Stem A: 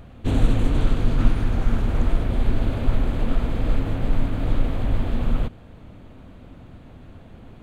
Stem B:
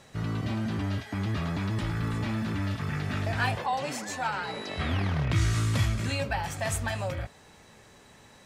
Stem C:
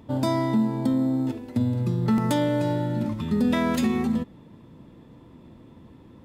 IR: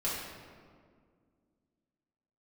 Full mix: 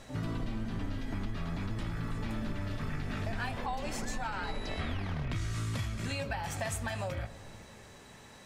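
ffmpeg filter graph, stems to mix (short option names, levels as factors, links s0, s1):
-filter_complex "[0:a]volume=0.126,asplit=2[s0][s1];[s1]volume=0.531[s2];[1:a]volume=1.06,asplit=2[s3][s4];[s4]volume=0.075[s5];[2:a]volume=0.15[s6];[3:a]atrim=start_sample=2205[s7];[s2][s5]amix=inputs=2:normalize=0[s8];[s8][s7]afir=irnorm=-1:irlink=0[s9];[s0][s3][s6][s9]amix=inputs=4:normalize=0,acompressor=threshold=0.0251:ratio=6"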